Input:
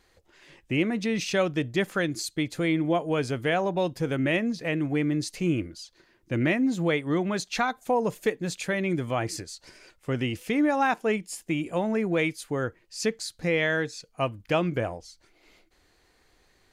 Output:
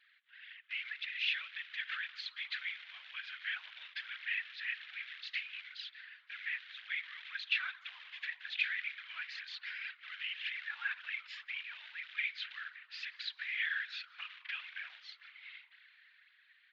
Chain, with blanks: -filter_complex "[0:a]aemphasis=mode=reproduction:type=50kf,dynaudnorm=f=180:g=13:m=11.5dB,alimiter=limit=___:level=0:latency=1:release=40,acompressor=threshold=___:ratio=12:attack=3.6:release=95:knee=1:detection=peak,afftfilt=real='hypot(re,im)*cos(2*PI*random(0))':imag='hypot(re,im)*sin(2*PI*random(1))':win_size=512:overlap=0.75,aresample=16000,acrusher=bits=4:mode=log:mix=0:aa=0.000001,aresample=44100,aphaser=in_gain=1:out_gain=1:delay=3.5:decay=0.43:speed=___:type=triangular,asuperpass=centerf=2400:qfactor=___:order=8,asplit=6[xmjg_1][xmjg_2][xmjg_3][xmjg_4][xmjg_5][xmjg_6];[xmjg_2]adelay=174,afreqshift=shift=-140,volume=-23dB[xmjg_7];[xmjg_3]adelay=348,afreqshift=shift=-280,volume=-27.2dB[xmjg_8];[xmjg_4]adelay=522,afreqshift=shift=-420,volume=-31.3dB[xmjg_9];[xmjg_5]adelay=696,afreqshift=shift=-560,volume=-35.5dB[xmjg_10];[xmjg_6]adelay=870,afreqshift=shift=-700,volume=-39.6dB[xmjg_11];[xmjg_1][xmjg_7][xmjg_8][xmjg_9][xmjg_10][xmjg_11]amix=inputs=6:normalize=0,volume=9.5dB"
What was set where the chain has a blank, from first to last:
-10dB, -31dB, 1.9, 1.1